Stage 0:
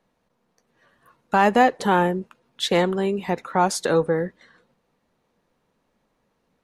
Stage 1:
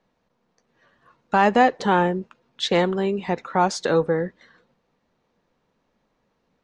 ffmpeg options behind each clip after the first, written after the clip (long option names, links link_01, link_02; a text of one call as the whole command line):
ffmpeg -i in.wav -af "lowpass=frequency=6700:width=0.5412,lowpass=frequency=6700:width=1.3066" out.wav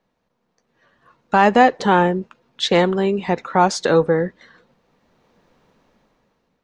ffmpeg -i in.wav -af "dynaudnorm=framelen=270:gausssize=7:maxgain=13.5dB,volume=-1dB" out.wav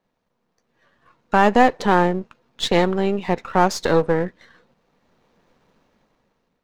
ffmpeg -i in.wav -af "aeval=exprs='if(lt(val(0),0),0.447*val(0),val(0))':channel_layout=same" out.wav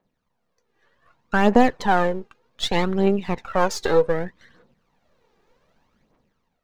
ffmpeg -i in.wav -af "aphaser=in_gain=1:out_gain=1:delay=2.6:decay=0.56:speed=0.65:type=triangular,volume=-4dB" out.wav